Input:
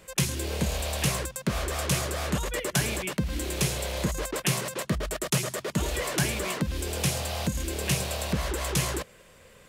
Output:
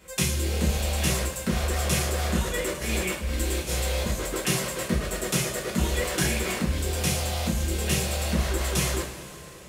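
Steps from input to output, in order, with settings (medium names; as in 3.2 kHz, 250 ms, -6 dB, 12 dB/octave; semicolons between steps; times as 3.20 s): 2.50–4.06 s: compressor with a negative ratio -30 dBFS, ratio -0.5; two-slope reverb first 0.36 s, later 3.6 s, from -18 dB, DRR -4.5 dB; trim -4 dB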